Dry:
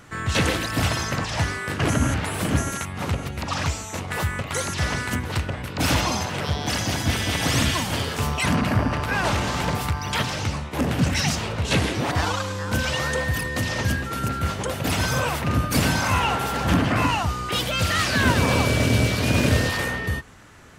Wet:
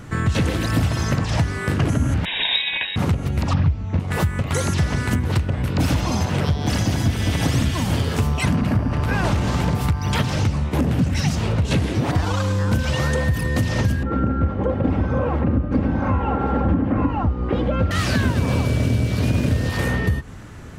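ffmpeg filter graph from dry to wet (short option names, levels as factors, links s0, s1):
-filter_complex "[0:a]asettb=1/sr,asplit=3[s0][s1][s2];[s0]atrim=end=2.254[s3];[s1]atrim=start=2.25:end=2.96,asetpts=PTS-STARTPTS,afade=t=in:d=0.004:c=qsin,afade=t=out:st=0.706:d=0.004:c=qsin,asuperstop=centerf=2600:order=4:qfactor=5.8,equalizer=f=1700:w=0.73:g=6,lowpass=f=3300:t=q:w=0.5098,lowpass=f=3300:t=q:w=0.6013,lowpass=f=3300:t=q:w=0.9,lowpass=f=3300:t=q:w=2.563,afreqshift=-3900[s4];[s2]atrim=start=2.956[s5];[s3][s4]acrossfade=d=0.004:c1=hsin:c2=qsin[s6];[s6][s5]acrossfade=d=0.004:c1=qsin:c2=hsin,asettb=1/sr,asplit=3[s7][s8][s9];[s7]atrim=end=3.534[s10];[s8]atrim=start=3.53:end=4,asetpts=PTS-STARTPTS,afade=t=in:d=0.004:c=qsin,afade=t=out:st=0.466:d=0.004:c=qsin,lowpass=f=5300:w=0.5412,lowpass=f=5300:w=1.3066,bass=f=250:g=11,treble=f=4000:g=-12[s11];[s9]atrim=start=3.996[s12];[s10][s11]acrossfade=d=0.004:c1=hsin:c2=qsin[s13];[s13][s12]acrossfade=d=0.004:c1=qsin:c2=hsin,asettb=1/sr,asplit=3[s14][s15][s16];[s14]atrim=end=14.034[s17];[s15]atrim=start=14.03:end=17.91,asetpts=PTS-STARTPTS,afade=t=in:d=0.004:c=qsin,afade=t=out:st=3.876:d=0.004:c=qsin,lowpass=1300,equalizer=f=400:t=o:w=0.39:g=6.5,aecho=1:1:3.7:0.54,atrim=end_sample=171108[s18];[s16]atrim=start=17.906[s19];[s17][s18]acrossfade=d=0.004:c1=hsin:c2=qsin[s20];[s20][s19]acrossfade=d=0.004:c1=qsin:c2=hsin,lowshelf=f=400:g=12,acompressor=threshold=0.112:ratio=6,volume=1.33"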